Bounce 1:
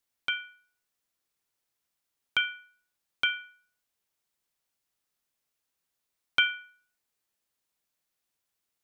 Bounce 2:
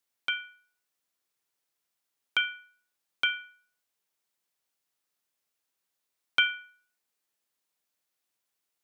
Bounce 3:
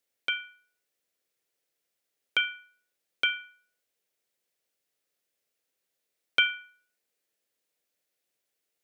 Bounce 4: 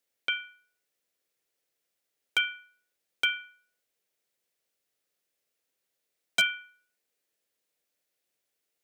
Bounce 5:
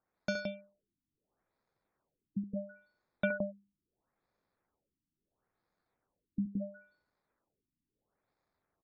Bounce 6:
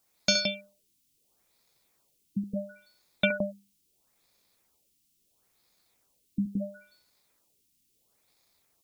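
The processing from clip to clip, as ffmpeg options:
-af "highpass=f=160:p=1,bandreject=f=60:t=h:w=6,bandreject=f=120:t=h:w=6,bandreject=f=180:t=h:w=6,bandreject=f=240:t=h:w=6"
-af "equalizer=f=500:t=o:w=1:g=9,equalizer=f=1k:t=o:w=1:g=-7,equalizer=f=2k:t=o:w=1:g=3"
-af "aeval=exprs='0.178*(abs(mod(val(0)/0.178+3,4)-2)-1)':c=same"
-af "aecho=1:1:69.97|169.1:0.251|0.708,acrusher=samples=15:mix=1:aa=0.000001,afftfilt=real='re*lt(b*sr/1024,320*pow(7000/320,0.5+0.5*sin(2*PI*0.74*pts/sr)))':imag='im*lt(b*sr/1024,320*pow(7000/320,0.5+0.5*sin(2*PI*0.74*pts/sr)))':win_size=1024:overlap=0.75,volume=-4.5dB"
-af "aexciter=amount=4.4:drive=7.5:freq=2.3k,volume=5dB"

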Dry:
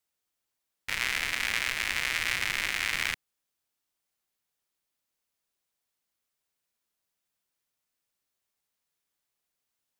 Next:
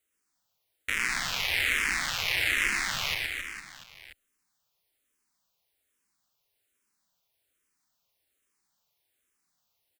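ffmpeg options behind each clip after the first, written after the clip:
-filter_complex "[0:a]alimiter=limit=-17.5dB:level=0:latency=1:release=11,aecho=1:1:120|270|457.5|691.9|984.8:0.631|0.398|0.251|0.158|0.1,asplit=2[a][b];[b]afreqshift=-1.2[c];[a][c]amix=inputs=2:normalize=1,volume=6.5dB"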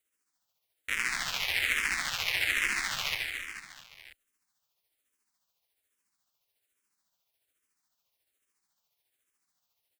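-af "tremolo=f=14:d=0.43,lowshelf=f=440:g=-4"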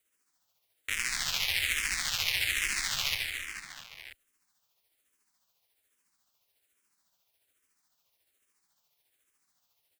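-filter_complex "[0:a]acrossover=split=130|3000[a][b][c];[b]acompressor=threshold=-47dB:ratio=2[d];[a][d][c]amix=inputs=3:normalize=0,volume=4.5dB"

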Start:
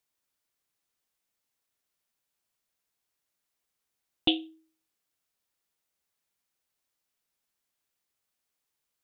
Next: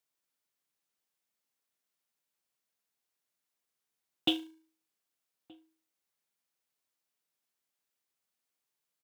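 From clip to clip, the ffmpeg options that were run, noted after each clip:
-filter_complex "[0:a]highpass=120,acrossover=split=510[a][b];[a]acrusher=bits=3:mode=log:mix=0:aa=0.000001[c];[c][b]amix=inputs=2:normalize=0,asplit=2[d][e];[e]adelay=1224,volume=-24dB,highshelf=f=4k:g=-27.6[f];[d][f]amix=inputs=2:normalize=0,volume=-3.5dB"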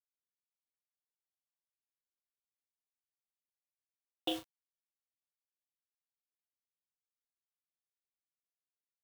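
-filter_complex "[0:a]equalizer=f=125:t=o:w=1:g=-10,equalizer=f=250:t=o:w=1:g=-11,equalizer=f=500:t=o:w=1:g=10,equalizer=f=2k:t=o:w=1:g=-8,equalizer=f=8k:t=o:w=1:g=-11,acrusher=bits=6:mix=0:aa=0.000001,asplit=2[a][b];[b]adelay=37,volume=-8dB[c];[a][c]amix=inputs=2:normalize=0,volume=-4dB"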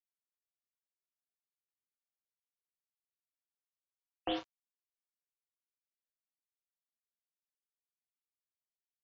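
-filter_complex "[0:a]asplit=2[a][b];[b]highpass=f=720:p=1,volume=22dB,asoftclip=type=tanh:threshold=-19dB[c];[a][c]amix=inputs=2:normalize=0,lowpass=f=1.5k:p=1,volume=-6dB,aeval=exprs='sgn(val(0))*max(abs(val(0))-0.00335,0)':c=same,afftfilt=real='re*lt(b*sr/1024,240*pow(7800/240,0.5+0.5*sin(2*PI*0.95*pts/sr)))':imag='im*lt(b*sr/1024,240*pow(7800/240,0.5+0.5*sin(2*PI*0.95*pts/sr)))':win_size=1024:overlap=0.75,volume=-2dB"

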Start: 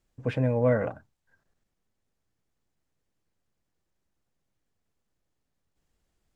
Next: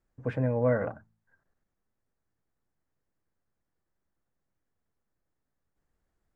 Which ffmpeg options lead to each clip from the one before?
-af "highshelf=f=2.2k:t=q:w=1.5:g=-7,bandreject=f=54.76:t=h:w=4,bandreject=f=109.52:t=h:w=4,bandreject=f=164.28:t=h:w=4,bandreject=f=219.04:t=h:w=4,volume=-2.5dB"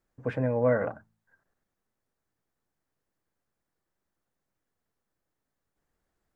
-af "lowshelf=f=160:g=-7,volume=2.5dB"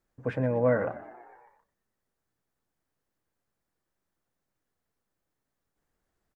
-filter_complex "[0:a]asplit=7[a][b][c][d][e][f][g];[b]adelay=120,afreqshift=58,volume=-18dB[h];[c]adelay=240,afreqshift=116,volume=-21.9dB[i];[d]adelay=360,afreqshift=174,volume=-25.8dB[j];[e]adelay=480,afreqshift=232,volume=-29.6dB[k];[f]adelay=600,afreqshift=290,volume=-33.5dB[l];[g]adelay=720,afreqshift=348,volume=-37.4dB[m];[a][h][i][j][k][l][m]amix=inputs=7:normalize=0"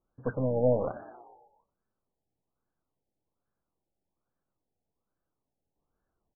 -af "aeval=exprs='0.237*(cos(1*acos(clip(val(0)/0.237,-1,1)))-cos(1*PI/2))+0.0211*(cos(6*acos(clip(val(0)/0.237,-1,1)))-cos(6*PI/2))':c=same,afftfilt=real='re*lt(b*sr/1024,860*pow(1800/860,0.5+0.5*sin(2*PI*1.2*pts/sr)))':imag='im*lt(b*sr/1024,860*pow(1800/860,0.5+0.5*sin(2*PI*1.2*pts/sr)))':win_size=1024:overlap=0.75,volume=-1dB"

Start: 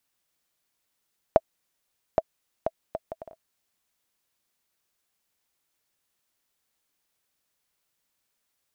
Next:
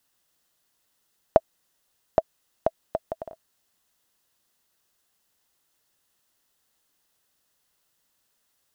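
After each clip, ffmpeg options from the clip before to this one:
-filter_complex "[0:a]bandreject=f=2.3k:w=7.4,asplit=2[a][b];[b]alimiter=limit=-14dB:level=0:latency=1:release=54,volume=-1dB[c];[a][c]amix=inputs=2:normalize=0"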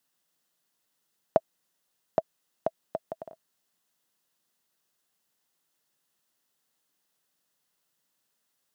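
-af "lowshelf=f=110:t=q:w=1.5:g=-9.5,volume=-5dB"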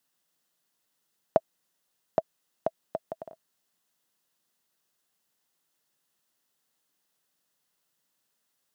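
-af anull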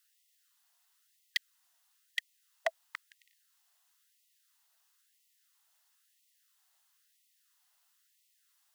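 -af "aeval=exprs='0.0794*(abs(mod(val(0)/0.0794+3,4)-2)-1)':c=same,afftfilt=real='re*gte(b*sr/1024,600*pow(1900/600,0.5+0.5*sin(2*PI*1*pts/sr)))':imag='im*gte(b*sr/1024,600*pow(1900/600,0.5+0.5*sin(2*PI*1*pts/sr)))':win_size=1024:overlap=0.75,volume=4.5dB"

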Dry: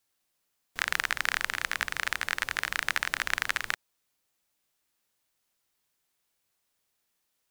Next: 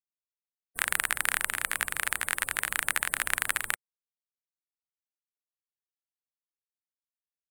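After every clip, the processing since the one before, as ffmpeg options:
-af "highshelf=f=7.3k:t=q:w=3:g=8.5,afftfilt=real='re*gte(hypot(re,im),0.00447)':imag='im*gte(hypot(re,im),0.00447)':win_size=1024:overlap=0.75"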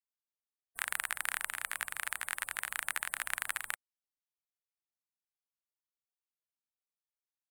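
-af "lowshelf=f=570:t=q:w=1.5:g=-7,volume=-8dB"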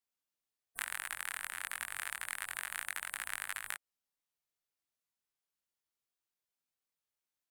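-af "acompressor=threshold=-36dB:ratio=6,flanger=delay=20:depth=2.4:speed=0.27,volume=6dB"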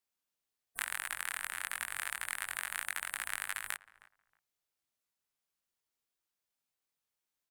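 -filter_complex "[0:a]asplit=2[a][b];[b]adelay=315,lowpass=f=1.3k:p=1,volume=-17dB,asplit=2[c][d];[d]adelay=315,lowpass=f=1.3k:p=1,volume=0.24[e];[a][c][e]amix=inputs=3:normalize=0,volume=2dB"

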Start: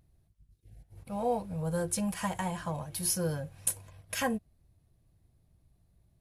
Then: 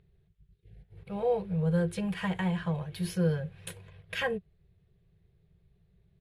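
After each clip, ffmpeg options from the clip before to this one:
-af "firequalizer=gain_entry='entry(120,0);entry(180,9);entry(250,-19);entry(400,11);entry(580,-3);entry(960,-4);entry(1700,4);entry(3500,3);entry(5700,-14);entry(14000,-18)':delay=0.05:min_phase=1"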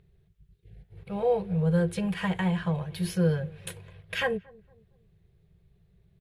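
-filter_complex "[0:a]asplit=2[a][b];[b]adelay=230,lowpass=f=850:p=1,volume=-23dB,asplit=2[c][d];[d]adelay=230,lowpass=f=850:p=1,volume=0.42,asplit=2[e][f];[f]adelay=230,lowpass=f=850:p=1,volume=0.42[g];[a][c][e][g]amix=inputs=4:normalize=0,volume=3dB"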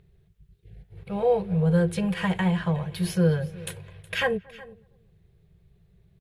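-af "aecho=1:1:368:0.1,volume=3dB"

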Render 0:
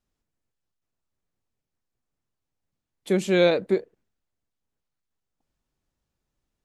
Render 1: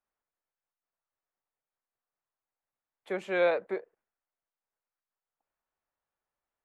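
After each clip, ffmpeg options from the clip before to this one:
-filter_complex "[0:a]acrossover=split=540 2200:gain=0.0891 1 0.0891[a][b][c];[a][b][c]amix=inputs=3:normalize=0"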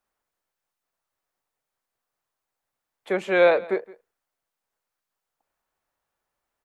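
-af "aecho=1:1:167:0.0891,volume=8.5dB"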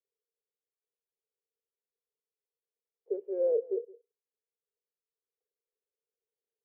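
-af "asuperpass=centerf=440:order=4:qfactor=5.1"

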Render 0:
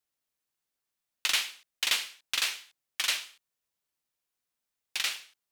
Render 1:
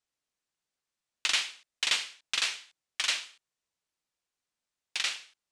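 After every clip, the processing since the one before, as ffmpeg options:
-af "lowpass=f=8.8k:w=0.5412,lowpass=f=8.8k:w=1.3066"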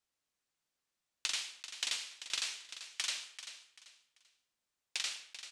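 -filter_complex "[0:a]acrossover=split=1100|4100[a][b][c];[a]acompressor=threshold=-57dB:ratio=4[d];[b]acompressor=threshold=-43dB:ratio=4[e];[c]acompressor=threshold=-36dB:ratio=4[f];[d][e][f]amix=inputs=3:normalize=0,aecho=1:1:389|778|1167:0.266|0.0772|0.0224"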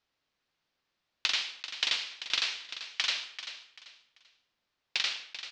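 -af "lowpass=f=4.9k:w=0.5412,lowpass=f=4.9k:w=1.3066,volume=8.5dB"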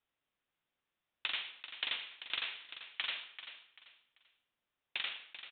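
-af "aresample=8000,aresample=44100,volume=-6dB"

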